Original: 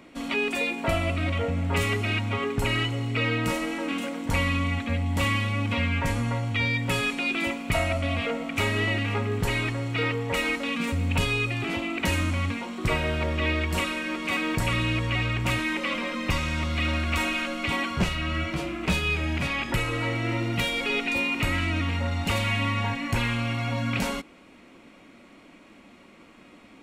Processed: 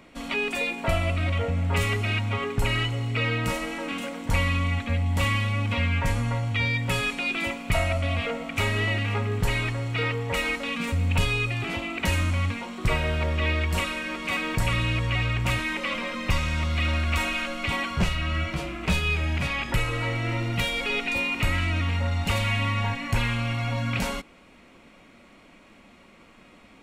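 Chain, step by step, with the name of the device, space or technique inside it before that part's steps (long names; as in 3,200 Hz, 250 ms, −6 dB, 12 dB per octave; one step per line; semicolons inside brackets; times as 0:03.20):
low shelf boost with a cut just above (low-shelf EQ 66 Hz +7.5 dB; parametric band 300 Hz −5.5 dB 0.69 octaves)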